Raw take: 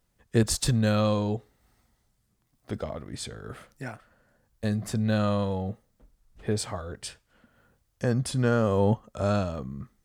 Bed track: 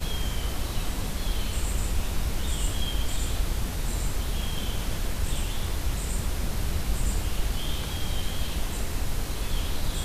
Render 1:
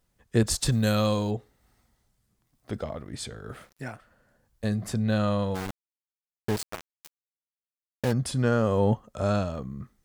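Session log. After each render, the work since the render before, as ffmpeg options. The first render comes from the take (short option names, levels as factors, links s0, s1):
-filter_complex "[0:a]asettb=1/sr,asplit=3[s0][s1][s2];[s0]atrim=end=0.724[s3];[s1]atrim=start=0.72:end=1.31,asetpts=PTS-STARTPTS,afade=t=in:d=0.004:c=qsin,afade=t=out:st=0.586:d=0.004:c=qsin,aemphasis=mode=production:type=50fm[s4];[s2]atrim=start=1.306[s5];[s3][s4]acrossfade=d=0.004:c1=hsin:c2=qsin[s6];[s6][s5]acrossfade=d=0.004:c1=qsin:c2=hsin,asettb=1/sr,asplit=3[s7][s8][s9];[s7]atrim=end=3.494[s10];[s8]atrim=start=3.49:end=3.91,asetpts=PTS-STARTPTS,afade=t=in:d=0.004:c=qsin,afade=t=out:st=0.416:d=0.004:c=qsin,aeval=exprs='val(0)*gte(abs(val(0)),0.00133)':c=same[s11];[s9]atrim=start=3.906[s12];[s10][s11]acrossfade=d=0.004:c1=hsin:c2=qsin[s13];[s13][s12]acrossfade=d=0.004:c1=qsin:c2=hsin,asplit=3[s14][s15][s16];[s14]afade=t=out:st=5.54:d=0.02[s17];[s15]aeval=exprs='val(0)*gte(abs(val(0)),0.0447)':c=same,afade=t=in:st=5.54:d=0.02,afade=t=out:st=8.11:d=0.02[s18];[s16]afade=t=in:st=8.11:d=0.02[s19];[s17][s18][s19]amix=inputs=3:normalize=0"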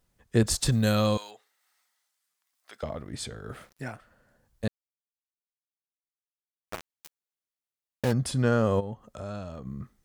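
-filter_complex "[0:a]asettb=1/sr,asplit=3[s0][s1][s2];[s0]atrim=end=1.174[s3];[s1]atrim=start=1.17:end=2.83,asetpts=PTS-STARTPTS,afade=t=in:d=0.004:c=qsin,afade=t=out:st=1.656:d=0.004:c=qsin,highpass=1300[s4];[s2]atrim=start=2.826[s5];[s3][s4]acrossfade=d=0.004:c1=hsin:c2=qsin[s6];[s6][s5]acrossfade=d=0.004:c1=qsin:c2=hsin,asplit=3[s7][s8][s9];[s7]afade=t=out:st=8.79:d=0.02[s10];[s8]acompressor=threshold=0.0112:ratio=2.5:attack=3.2:release=140:knee=1:detection=peak,afade=t=in:st=8.79:d=0.02,afade=t=out:st=9.65:d=0.02[s11];[s9]afade=t=in:st=9.65:d=0.02[s12];[s10][s11][s12]amix=inputs=3:normalize=0,asplit=3[s13][s14][s15];[s13]atrim=end=4.68,asetpts=PTS-STARTPTS,afade=t=out:st=4.676:d=0.004:c=hsin[s16];[s14]atrim=start=4.68:end=6.67,asetpts=PTS-STARTPTS,volume=0[s17];[s15]atrim=start=6.67,asetpts=PTS-STARTPTS,afade=t=in:d=0.004:c=hsin[s18];[s16][s17][s18]concat=n=3:v=0:a=1"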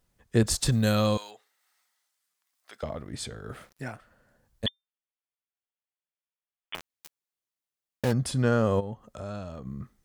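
-filter_complex "[0:a]asettb=1/sr,asplit=3[s0][s1][s2];[s0]atrim=end=4.664[s3];[s1]atrim=start=4.66:end=6.75,asetpts=PTS-STARTPTS,afade=t=in:d=0.004:c=qsin,afade=t=out:st=2.086:d=0.004:c=qsin,lowpass=f=3100:t=q:w=0.5098,lowpass=f=3100:t=q:w=0.6013,lowpass=f=3100:t=q:w=0.9,lowpass=f=3100:t=q:w=2.563,afreqshift=-3600[s4];[s2]atrim=start=6.746[s5];[s3][s4]acrossfade=d=0.004:c1=hsin:c2=qsin[s6];[s6][s5]acrossfade=d=0.004:c1=qsin:c2=hsin"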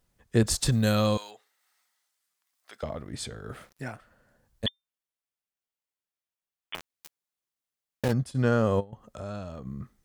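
-filter_complex "[0:a]asettb=1/sr,asplit=3[s0][s1][s2];[s0]atrim=end=8.084[s3];[s1]atrim=start=8.08:end=8.93,asetpts=PTS-STARTPTS,afade=t=in:d=0.004:c=qsin,afade=t=out:st=0.846:d=0.004:c=qsin,agate=range=0.0224:threshold=0.0501:ratio=3:release=100:detection=peak[s4];[s2]atrim=start=8.926[s5];[s3][s4]acrossfade=d=0.004:c1=hsin:c2=qsin[s6];[s6][s5]acrossfade=d=0.004:c1=qsin:c2=hsin"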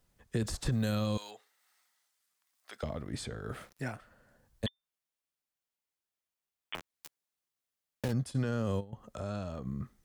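-filter_complex "[0:a]alimiter=limit=0.119:level=0:latency=1:release=38,acrossover=split=330|2300[s0][s1][s2];[s0]acompressor=threshold=0.0355:ratio=4[s3];[s1]acompressor=threshold=0.0126:ratio=4[s4];[s2]acompressor=threshold=0.00708:ratio=4[s5];[s3][s4][s5]amix=inputs=3:normalize=0"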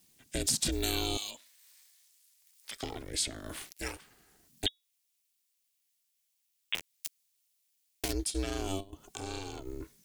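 -af "aexciter=amount=3.9:drive=6.4:freq=2100,aeval=exprs='val(0)*sin(2*PI*190*n/s)':c=same"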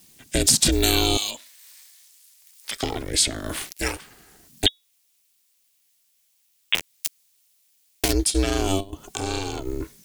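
-af "volume=3.98"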